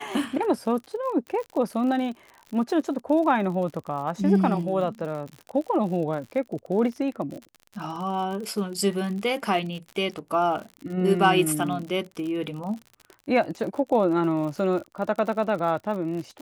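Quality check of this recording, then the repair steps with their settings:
crackle 54 per s -33 dBFS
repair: de-click

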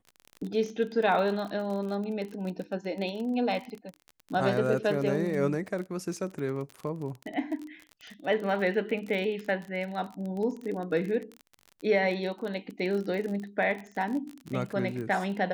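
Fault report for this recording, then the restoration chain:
crackle 34 per s -34 dBFS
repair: de-click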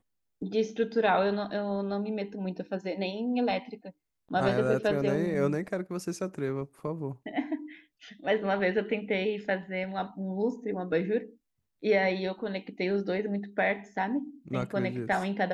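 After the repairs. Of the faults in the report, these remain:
nothing left

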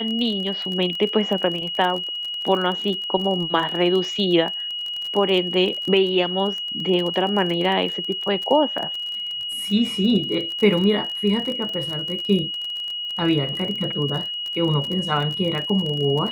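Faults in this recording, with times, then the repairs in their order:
crackle 31 per s -26 dBFS
whine 2.9 kHz -26 dBFS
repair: de-click; band-stop 2.9 kHz, Q 30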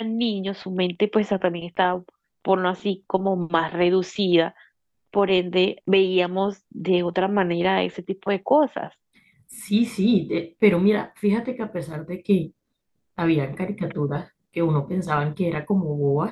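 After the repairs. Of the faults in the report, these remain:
nothing left

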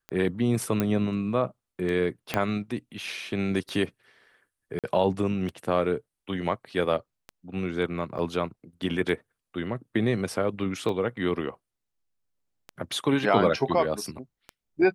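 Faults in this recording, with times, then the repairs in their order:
tick 33 1/3 rpm -22 dBFS
0.80 s: pop -12 dBFS
2.34 s: pop -10 dBFS
4.79–4.84 s: dropout 47 ms
8.18–8.19 s: dropout 8.8 ms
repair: de-click; interpolate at 4.79 s, 47 ms; interpolate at 8.18 s, 8.8 ms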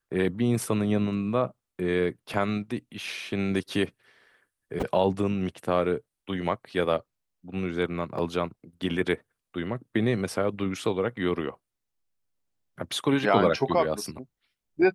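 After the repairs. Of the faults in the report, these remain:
2.34 s: pop

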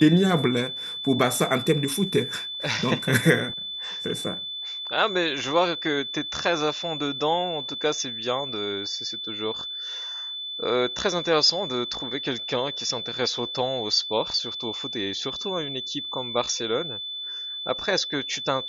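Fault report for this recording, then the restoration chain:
whine 3.5 kHz -31 dBFS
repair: band-stop 3.5 kHz, Q 30

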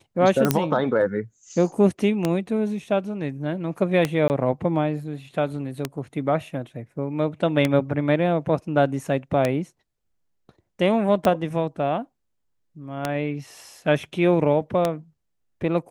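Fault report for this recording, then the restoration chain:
tick 33 1/3 rpm -7 dBFS
0.51 s: pop -3 dBFS
4.28–4.30 s: dropout 19 ms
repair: de-click; interpolate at 4.28 s, 19 ms

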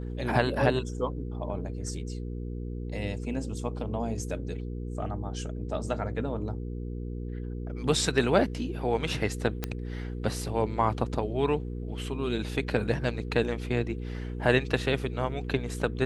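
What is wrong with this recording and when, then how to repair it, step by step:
hum 60 Hz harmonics 8 -35 dBFS
9.64 s: pop -14 dBFS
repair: de-click; de-hum 60 Hz, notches 8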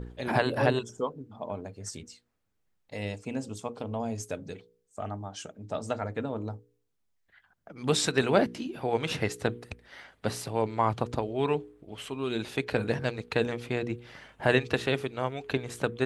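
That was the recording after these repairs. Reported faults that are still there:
nothing left

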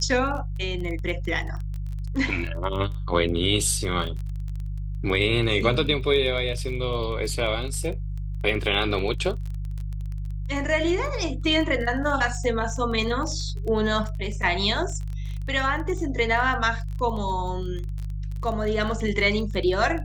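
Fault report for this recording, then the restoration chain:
crackle 21 per s -31 dBFS
hum 50 Hz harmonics 3 -30 dBFS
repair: de-click; de-hum 50 Hz, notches 3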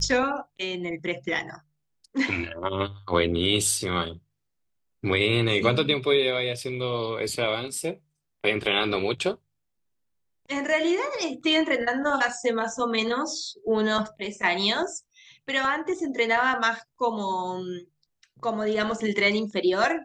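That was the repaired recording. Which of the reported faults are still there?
nothing left

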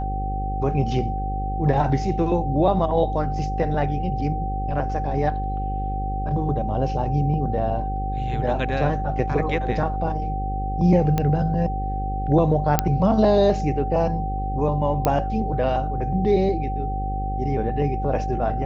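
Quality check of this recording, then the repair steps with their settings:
buzz 50 Hz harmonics 11 -27 dBFS
whine 770 Hz -28 dBFS
11.18 s: pop -10 dBFS
12.79 s: pop -2 dBFS
15.05 s: pop -7 dBFS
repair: de-click; band-stop 770 Hz, Q 30; de-hum 50 Hz, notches 11

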